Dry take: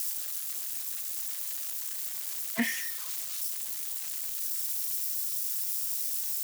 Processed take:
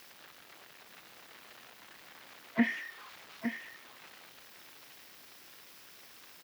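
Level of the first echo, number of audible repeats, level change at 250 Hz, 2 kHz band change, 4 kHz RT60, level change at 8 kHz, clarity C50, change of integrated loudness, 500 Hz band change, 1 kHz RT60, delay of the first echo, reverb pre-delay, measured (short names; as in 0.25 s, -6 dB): -8.0 dB, 1, +3.5 dB, -1.0 dB, none, -24.5 dB, none, -9.0 dB, +3.0 dB, none, 0.859 s, none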